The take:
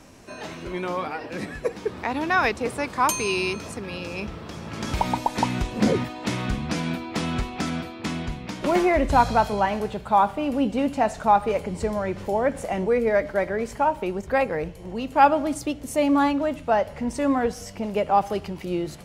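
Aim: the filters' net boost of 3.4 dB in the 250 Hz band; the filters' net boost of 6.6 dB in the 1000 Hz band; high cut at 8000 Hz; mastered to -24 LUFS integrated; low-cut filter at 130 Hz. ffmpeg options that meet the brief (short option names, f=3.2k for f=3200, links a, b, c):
-af "highpass=130,lowpass=8k,equalizer=f=250:t=o:g=4,equalizer=f=1k:t=o:g=8,volume=-4dB"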